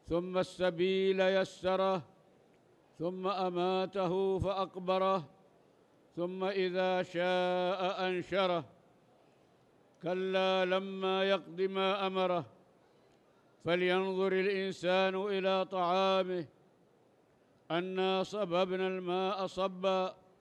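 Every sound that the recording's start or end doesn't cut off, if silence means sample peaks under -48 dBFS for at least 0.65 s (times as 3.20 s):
3.00–5.27 s
6.17–8.66 s
10.02–12.47 s
13.65–16.46 s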